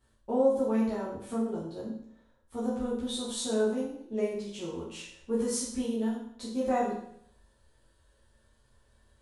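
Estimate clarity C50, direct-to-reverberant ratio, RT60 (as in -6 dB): 2.5 dB, -9.0 dB, 0.70 s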